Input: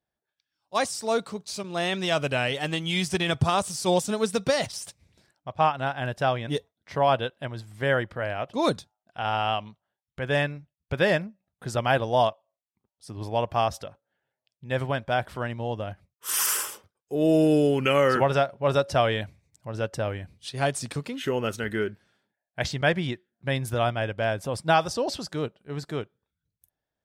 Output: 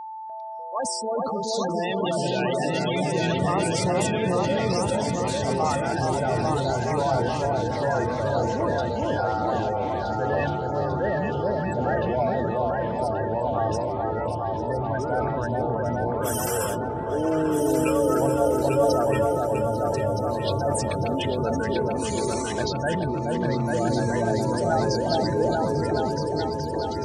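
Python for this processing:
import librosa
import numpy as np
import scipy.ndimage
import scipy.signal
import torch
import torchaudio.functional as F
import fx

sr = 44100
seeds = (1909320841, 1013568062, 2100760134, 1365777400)

p1 = fx.spec_gate(x, sr, threshold_db=-10, keep='strong')
p2 = fx.over_compress(p1, sr, threshold_db=-34.0, ratio=-1.0)
p3 = p1 + F.gain(torch.from_numpy(p2), 1.0).numpy()
p4 = fx.high_shelf(p3, sr, hz=5900.0, db=-5.0)
p5 = p4 + fx.echo_opening(p4, sr, ms=423, hz=750, octaves=2, feedback_pct=70, wet_db=0, dry=0)
p6 = p5 + 10.0 ** (-29.0 / 20.0) * np.sin(2.0 * np.pi * 880.0 * np.arange(len(p5)) / sr)
p7 = fx.low_shelf(p6, sr, hz=72.0, db=-12.0)
p8 = fx.echo_pitch(p7, sr, ms=296, semitones=-5, count=3, db_per_echo=-6.0)
p9 = fx.sustainer(p8, sr, db_per_s=24.0)
y = F.gain(torch.from_numpy(p9), -4.5).numpy()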